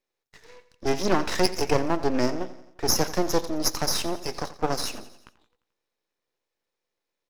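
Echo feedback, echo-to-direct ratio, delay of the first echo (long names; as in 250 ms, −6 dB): 55%, −14.5 dB, 87 ms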